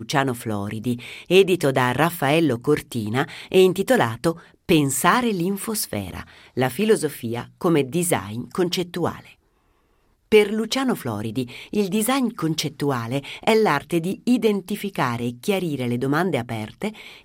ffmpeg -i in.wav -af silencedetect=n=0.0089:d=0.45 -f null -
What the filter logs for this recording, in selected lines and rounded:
silence_start: 9.32
silence_end: 10.32 | silence_duration: 1.00